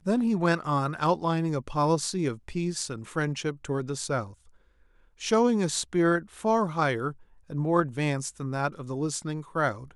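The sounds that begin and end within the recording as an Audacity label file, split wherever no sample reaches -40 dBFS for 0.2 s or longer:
5.210000	7.120000	sound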